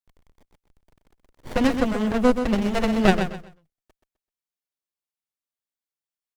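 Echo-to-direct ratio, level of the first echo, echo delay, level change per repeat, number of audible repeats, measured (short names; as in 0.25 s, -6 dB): -8.0 dB, -8.5 dB, 0.128 s, -12.0 dB, 3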